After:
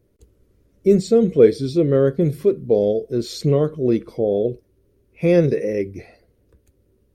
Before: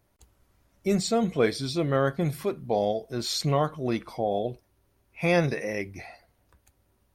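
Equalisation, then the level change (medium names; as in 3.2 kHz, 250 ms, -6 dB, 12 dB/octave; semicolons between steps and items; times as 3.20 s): resonant low shelf 600 Hz +9.5 dB, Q 3; -3.0 dB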